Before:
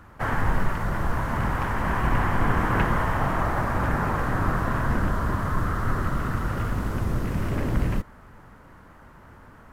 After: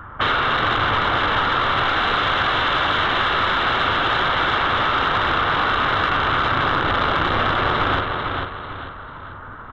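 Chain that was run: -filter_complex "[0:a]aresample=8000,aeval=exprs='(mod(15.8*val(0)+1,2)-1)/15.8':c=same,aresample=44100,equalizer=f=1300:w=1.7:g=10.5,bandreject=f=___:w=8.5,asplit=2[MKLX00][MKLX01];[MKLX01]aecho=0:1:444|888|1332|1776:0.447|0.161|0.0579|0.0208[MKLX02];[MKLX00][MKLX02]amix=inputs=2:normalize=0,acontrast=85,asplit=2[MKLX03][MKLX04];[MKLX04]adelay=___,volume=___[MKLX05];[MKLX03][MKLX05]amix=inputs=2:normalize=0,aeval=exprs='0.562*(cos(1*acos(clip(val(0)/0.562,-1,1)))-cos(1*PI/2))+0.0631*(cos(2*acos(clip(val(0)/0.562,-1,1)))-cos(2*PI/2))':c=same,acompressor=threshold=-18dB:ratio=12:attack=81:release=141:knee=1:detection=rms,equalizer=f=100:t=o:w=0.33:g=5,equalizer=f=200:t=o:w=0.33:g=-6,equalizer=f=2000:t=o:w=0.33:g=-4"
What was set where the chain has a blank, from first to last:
2500, 41, -12.5dB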